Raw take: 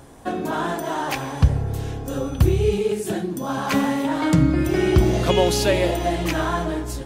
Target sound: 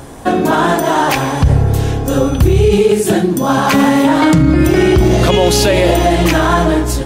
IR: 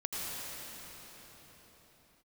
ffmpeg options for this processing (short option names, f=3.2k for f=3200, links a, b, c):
-af "alimiter=level_in=14dB:limit=-1dB:release=50:level=0:latency=1,volume=-1dB"